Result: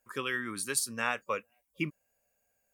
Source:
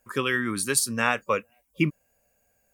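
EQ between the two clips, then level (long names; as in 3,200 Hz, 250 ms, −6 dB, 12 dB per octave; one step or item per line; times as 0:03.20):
low-shelf EQ 320 Hz −6.5 dB
−7.0 dB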